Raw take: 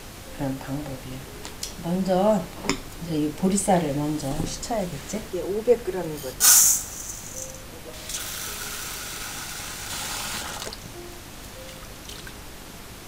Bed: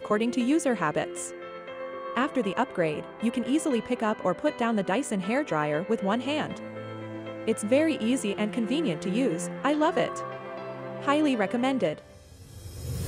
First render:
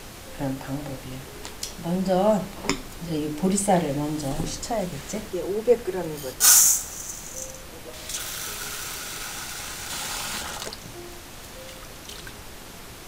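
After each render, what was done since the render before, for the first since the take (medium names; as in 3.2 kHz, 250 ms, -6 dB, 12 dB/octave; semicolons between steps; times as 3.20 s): de-hum 50 Hz, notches 6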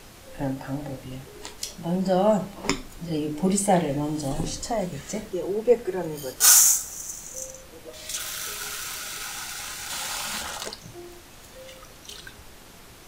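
noise print and reduce 6 dB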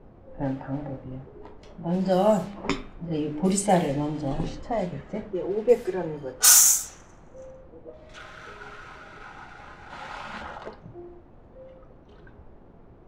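level-controlled noise filter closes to 580 Hz, open at -17.5 dBFS; de-hum 102.3 Hz, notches 36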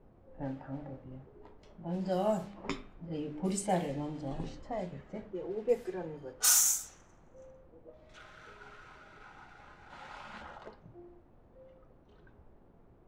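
trim -10 dB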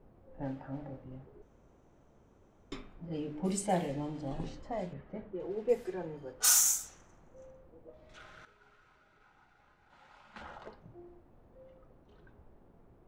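1.42–2.72 s: room tone; 4.93–5.40 s: distance through air 280 m; 8.45–10.36 s: gain -11.5 dB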